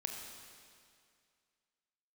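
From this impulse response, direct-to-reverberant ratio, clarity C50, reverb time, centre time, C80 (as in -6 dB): 2.0 dB, 3.5 dB, 2.2 s, 68 ms, 4.5 dB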